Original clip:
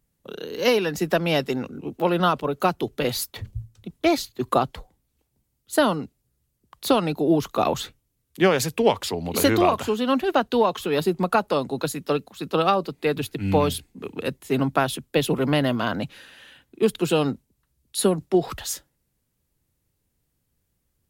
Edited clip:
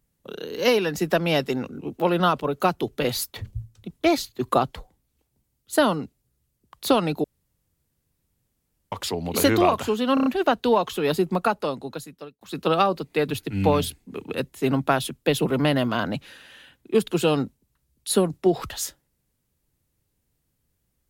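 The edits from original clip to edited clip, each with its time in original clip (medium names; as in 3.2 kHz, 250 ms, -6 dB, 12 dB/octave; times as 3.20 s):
7.24–8.92 s: room tone
10.14 s: stutter 0.03 s, 5 plays
11.15–12.29 s: fade out linear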